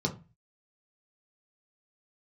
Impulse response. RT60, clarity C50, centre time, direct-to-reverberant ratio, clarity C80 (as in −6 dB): 0.30 s, 14.0 dB, 10 ms, 0.0 dB, 20.0 dB